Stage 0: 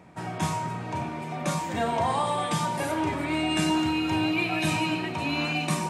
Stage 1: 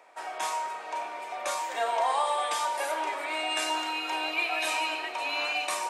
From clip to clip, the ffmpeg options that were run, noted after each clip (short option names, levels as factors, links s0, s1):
-af "highpass=f=520:w=0.5412,highpass=f=520:w=1.3066"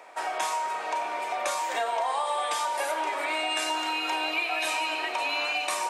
-af "acompressor=threshold=0.02:ratio=4,volume=2.37"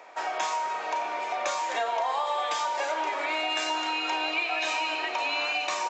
-af "aresample=16000,aresample=44100"